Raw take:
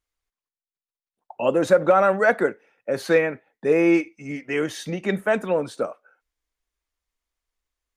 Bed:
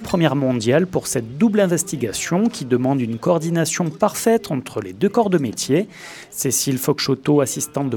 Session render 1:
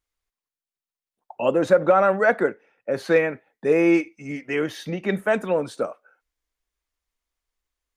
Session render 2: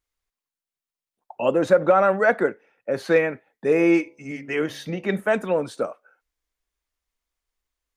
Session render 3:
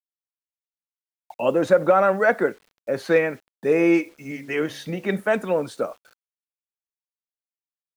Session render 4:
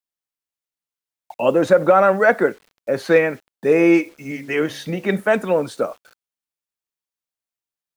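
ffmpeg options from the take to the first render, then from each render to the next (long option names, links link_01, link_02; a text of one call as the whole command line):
ffmpeg -i in.wav -filter_complex "[0:a]asettb=1/sr,asplit=3[link_01][link_02][link_03];[link_01]atrim=end=1.514[link_04];[link_02]atrim=start=1.51:end=3.16,asetpts=PTS-STARTPTS,afade=type=in:duration=0.004:curve=qsin,afade=type=out:start_time=1.646:duration=0.004:curve=qsin,highshelf=frequency=5200:gain=-8[link_05];[link_03]atrim=start=3.156[link_06];[link_04][link_05]acrossfade=duration=0.004:curve1=hsin:curve2=qsin[link_07];[link_07][link_06]acrossfade=duration=0.004:curve1=qsin:curve2=hsin,asettb=1/sr,asplit=3[link_08][link_09][link_10];[link_08]atrim=end=4.554[link_11];[link_09]atrim=start=4.55:end=5.12,asetpts=PTS-STARTPTS,afade=type=in:duration=0.004:curve=qsin,afade=type=out:start_time=0.566:duration=0.004:curve=qsin,equalizer=frequency=7800:width_type=o:width=0.84:gain=-9.5[link_12];[link_10]atrim=start=5.116[link_13];[link_11][link_12]acrossfade=duration=0.004:curve1=hsin:curve2=qsin[link_14];[link_14][link_13]acrossfade=duration=0.004:curve1=qsin:curve2=hsin" out.wav
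ffmpeg -i in.wav -filter_complex "[0:a]asettb=1/sr,asplit=3[link_01][link_02][link_03];[link_01]atrim=end=3.704[link_04];[link_02]atrim=start=3.7:end=5.2,asetpts=PTS-STARTPTS,afade=type=in:duration=0.004:curve=qsin,afade=type=out:start_time=1.496:duration=0.004:curve=qsin,bandreject=frequency=70.96:width_type=h:width=4,bandreject=frequency=141.92:width_type=h:width=4,bandreject=frequency=212.88:width_type=h:width=4,bandreject=frequency=283.84:width_type=h:width=4,bandreject=frequency=354.8:width_type=h:width=4,bandreject=frequency=425.76:width_type=h:width=4,bandreject=frequency=496.72:width_type=h:width=4,bandreject=frequency=567.68:width_type=h:width=4,bandreject=frequency=638.64:width_type=h:width=4,bandreject=frequency=709.6:width_type=h:width=4,bandreject=frequency=780.56:width_type=h:width=4,bandreject=frequency=851.52:width_type=h:width=4,bandreject=frequency=922.48:width_type=h:width=4,bandreject=frequency=993.44:width_type=h:width=4,bandreject=frequency=1064.4:width_type=h:width=4[link_05];[link_03]atrim=start=5.196[link_06];[link_04][link_05]acrossfade=duration=0.004:curve1=hsin:curve2=qsin[link_07];[link_07][link_06]acrossfade=duration=0.004:curve1=qsin:curve2=hsin" out.wav
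ffmpeg -i in.wav -af "acrusher=bits=8:mix=0:aa=0.000001" out.wav
ffmpeg -i in.wav -af "volume=4dB,alimiter=limit=-3dB:level=0:latency=1" out.wav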